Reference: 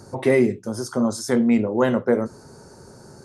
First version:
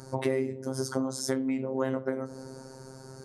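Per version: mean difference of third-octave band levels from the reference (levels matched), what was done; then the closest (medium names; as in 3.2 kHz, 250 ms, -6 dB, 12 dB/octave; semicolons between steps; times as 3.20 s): 5.5 dB: on a send: feedback echo behind a low-pass 92 ms, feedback 76%, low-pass 770 Hz, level -23 dB; on the sum: compression 10:1, threshold -24 dBFS, peak gain reduction 12 dB; robot voice 132 Hz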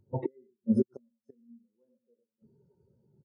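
15.0 dB: on a send: feedback delay 98 ms, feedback 19%, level -4 dB; on the sum: inverted gate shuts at -15 dBFS, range -29 dB; spectral contrast expander 2.5:1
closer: first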